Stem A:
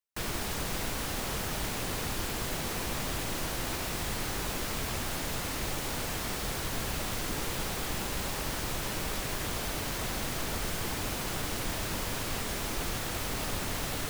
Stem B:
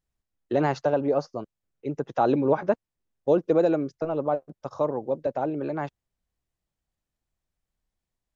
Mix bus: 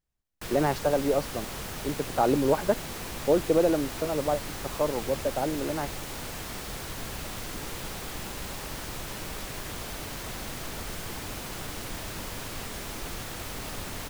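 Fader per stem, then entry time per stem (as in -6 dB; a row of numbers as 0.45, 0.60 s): -3.0, -1.5 dB; 0.25, 0.00 s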